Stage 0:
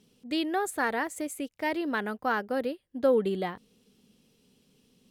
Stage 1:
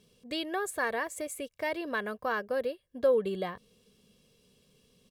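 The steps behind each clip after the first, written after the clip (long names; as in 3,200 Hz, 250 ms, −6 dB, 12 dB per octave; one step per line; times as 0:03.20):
comb filter 1.8 ms, depth 56%
in parallel at −1.5 dB: downward compressor, threshold −35 dBFS, peak gain reduction 17 dB
on the sum: level −5.5 dB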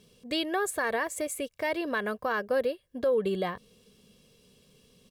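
brickwall limiter −24 dBFS, peak gain reduction 8 dB
level +4.5 dB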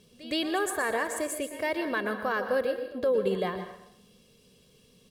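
backwards echo 117 ms −17.5 dB
dense smooth reverb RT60 0.74 s, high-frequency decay 0.85×, pre-delay 105 ms, DRR 8 dB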